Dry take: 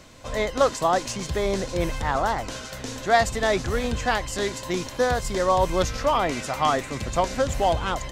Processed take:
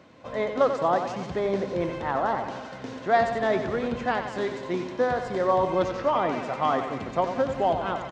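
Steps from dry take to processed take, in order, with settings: high-pass 160 Hz 12 dB/octave; tape spacing loss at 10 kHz 29 dB; feedback delay 91 ms, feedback 59%, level -8.5 dB

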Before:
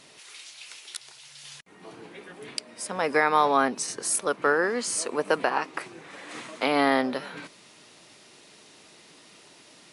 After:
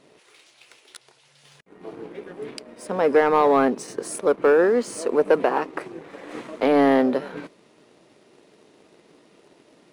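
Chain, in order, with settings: FFT filter 110 Hz 0 dB, 450 Hz +7 dB, 800 Hz 0 dB, 5.4 kHz -11 dB; waveshaping leveller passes 1

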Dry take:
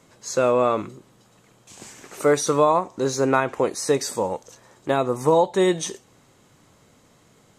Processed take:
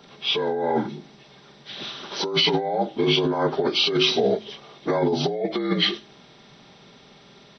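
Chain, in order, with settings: frequency axis rescaled in octaves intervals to 79%; treble shelf 6.2 kHz +11 dB; comb 5 ms, depth 34%; de-hum 53.35 Hz, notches 7; compressor with a negative ratio -25 dBFS, ratio -1; trim +3 dB

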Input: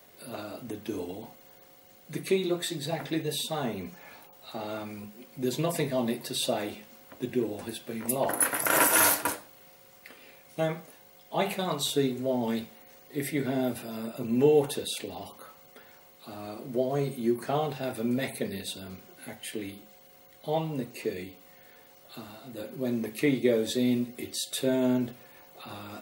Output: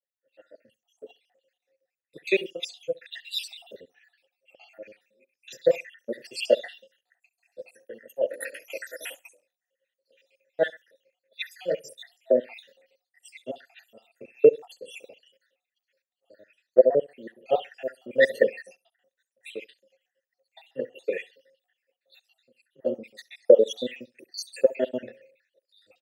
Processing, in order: random holes in the spectrogram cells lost 74%; treble shelf 2.1 kHz +11.5 dB; level rider gain up to 11 dB; crackle 40 per s -37 dBFS; vowel filter e; feedback delay 67 ms, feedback 26%, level -21.5 dB; three bands expanded up and down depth 100%

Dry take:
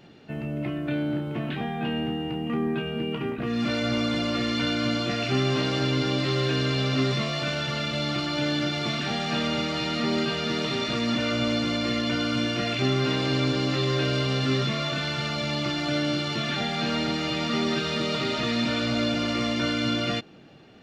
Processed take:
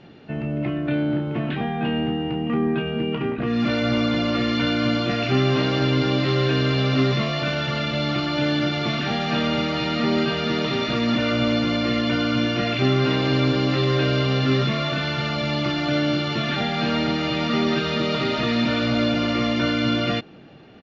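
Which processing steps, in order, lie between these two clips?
resampled via 16 kHz; distance through air 130 m; trim +5 dB

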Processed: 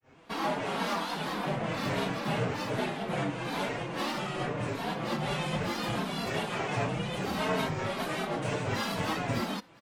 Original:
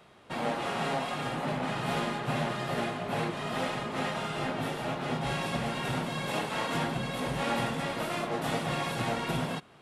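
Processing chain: comb 5.2 ms, depth 75%; granulator 239 ms, grains 10 per s, spray 10 ms, pitch spread up and down by 7 st

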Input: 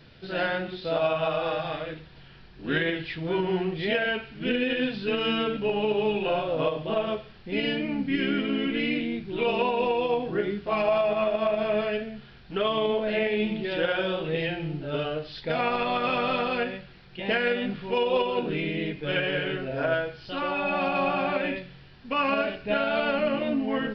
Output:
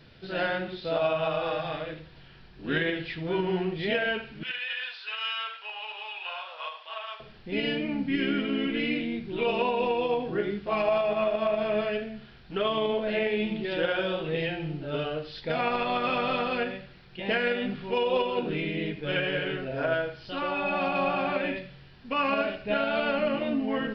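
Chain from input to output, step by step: 4.43–7.20 s: high-pass 980 Hz 24 dB/octave; tape echo 80 ms, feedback 24%, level -14.5 dB, low-pass 4.2 kHz; trim -1.5 dB

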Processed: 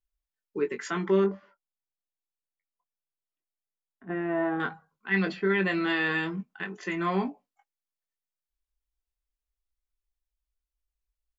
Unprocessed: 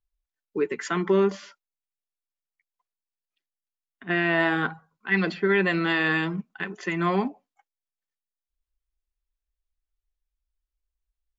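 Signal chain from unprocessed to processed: 1.24–4.60 s: low-pass 1 kHz 12 dB/octave; doubling 21 ms -7 dB; trim -4.5 dB

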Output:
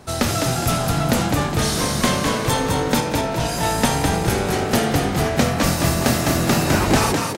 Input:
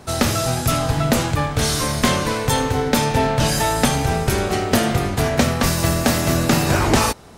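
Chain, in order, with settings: 3.00–3.63 s: feedback comb 60 Hz, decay 0.2 s, harmonics all, mix 70%; on a send: frequency-shifting echo 206 ms, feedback 43%, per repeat +49 Hz, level -4.5 dB; on the sum: trim -2 dB

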